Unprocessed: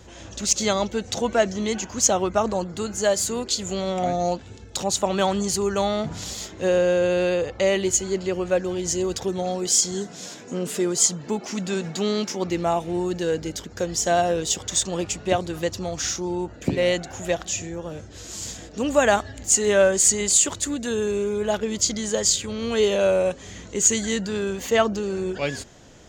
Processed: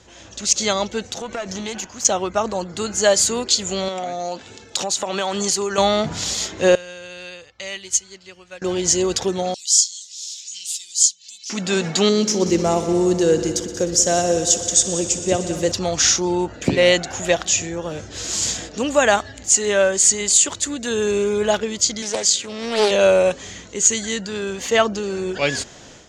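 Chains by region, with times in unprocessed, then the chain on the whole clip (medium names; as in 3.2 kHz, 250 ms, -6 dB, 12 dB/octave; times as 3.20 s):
1.07–2.05 s: compression 12:1, threshold -25 dBFS + valve stage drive 21 dB, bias 0.75
3.88–5.78 s: high-pass 280 Hz 6 dB/octave + compression, threshold -26 dBFS
6.75–8.62 s: amplifier tone stack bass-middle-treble 5-5-5 + band-stop 6.9 kHz, Q 14 + upward expansion, over -52 dBFS
9.54–11.50 s: inverse Chebyshev high-pass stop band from 1.4 kHz, stop band 50 dB + upward compressor, threshold -35 dBFS
12.09–15.72 s: high-order bell 1.7 kHz -9 dB 3 oct + multi-head delay 61 ms, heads all three, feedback 70%, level -17 dB
22.02–22.91 s: high-pass 170 Hz + loudspeaker Doppler distortion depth 0.39 ms
whole clip: low-pass 7.5 kHz 12 dB/octave; tilt EQ +1.5 dB/octave; level rider; trim -1 dB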